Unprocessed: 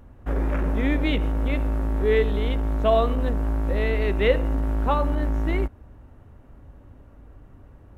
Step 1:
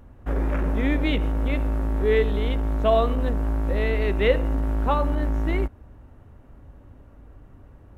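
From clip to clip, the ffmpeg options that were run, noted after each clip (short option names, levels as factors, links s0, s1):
-af anull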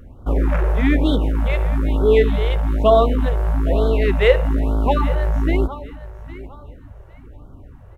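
-filter_complex "[0:a]asplit=2[s0][s1];[s1]adynamicsmooth=sensitivity=5.5:basefreq=2000,volume=0.251[s2];[s0][s2]amix=inputs=2:normalize=0,aecho=1:1:809|1618|2427:0.158|0.0428|0.0116,afftfilt=real='re*(1-between(b*sr/1024,220*pow(2200/220,0.5+0.5*sin(2*PI*1.1*pts/sr))/1.41,220*pow(2200/220,0.5+0.5*sin(2*PI*1.1*pts/sr))*1.41))':imag='im*(1-between(b*sr/1024,220*pow(2200/220,0.5+0.5*sin(2*PI*1.1*pts/sr))/1.41,220*pow(2200/220,0.5+0.5*sin(2*PI*1.1*pts/sr))*1.41))':win_size=1024:overlap=0.75,volume=1.68"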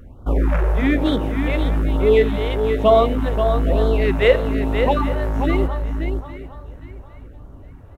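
-af "aecho=1:1:531:0.447"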